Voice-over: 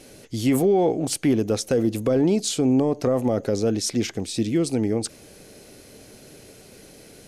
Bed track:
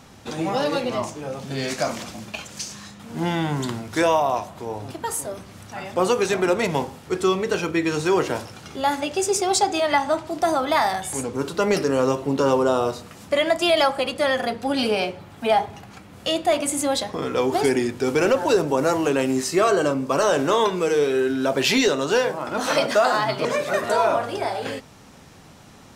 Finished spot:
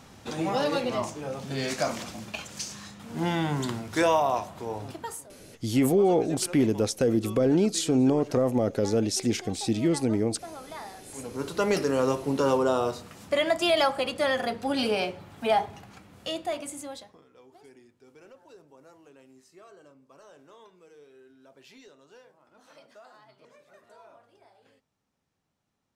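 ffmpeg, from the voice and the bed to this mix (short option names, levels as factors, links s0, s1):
-filter_complex "[0:a]adelay=5300,volume=0.75[s0];[1:a]volume=4.47,afade=t=out:st=4.82:d=0.47:silence=0.133352,afade=t=in:st=11.03:d=0.53:silence=0.149624,afade=t=out:st=15.56:d=1.68:silence=0.0354813[s1];[s0][s1]amix=inputs=2:normalize=0"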